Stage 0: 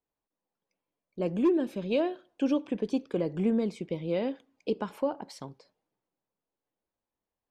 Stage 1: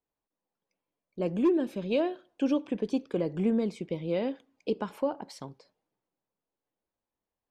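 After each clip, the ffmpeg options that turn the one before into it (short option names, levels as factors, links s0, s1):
-af anull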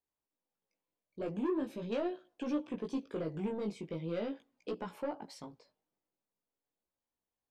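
-af "asoftclip=type=tanh:threshold=0.0631,flanger=delay=16.5:depth=3.2:speed=0.42,volume=0.794"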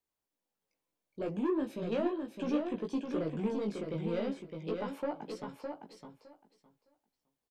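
-filter_complex "[0:a]acrossover=split=340|3300[s0][s1][s2];[s2]alimiter=level_in=16.8:limit=0.0631:level=0:latency=1:release=308,volume=0.0596[s3];[s0][s1][s3]amix=inputs=3:normalize=0,aecho=1:1:611|1222|1833:0.531|0.0849|0.0136,volume=1.26"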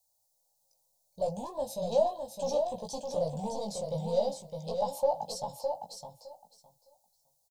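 -af "firequalizer=gain_entry='entry(130,0);entry(340,-30);entry(530,3);entry(840,6);entry(1300,-27);entry(2300,-23);entry(4000,5);entry(6500,11)':delay=0.05:min_phase=1,volume=2.11"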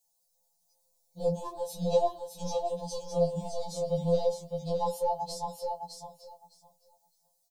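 -af "afftfilt=real='re*2.83*eq(mod(b,8),0)':imag='im*2.83*eq(mod(b,8),0)':win_size=2048:overlap=0.75,volume=1.33"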